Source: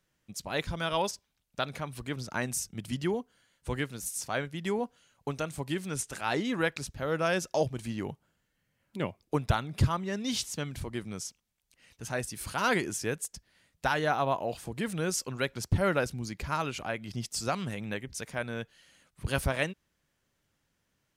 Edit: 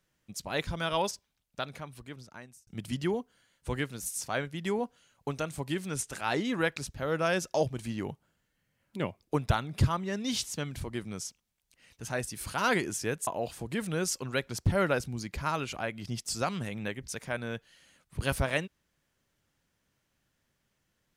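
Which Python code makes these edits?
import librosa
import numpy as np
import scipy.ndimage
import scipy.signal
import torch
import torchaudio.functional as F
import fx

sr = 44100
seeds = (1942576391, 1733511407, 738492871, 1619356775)

y = fx.edit(x, sr, fx.fade_out_span(start_s=1.1, length_s=1.57),
    fx.cut(start_s=13.27, length_s=1.06), tone=tone)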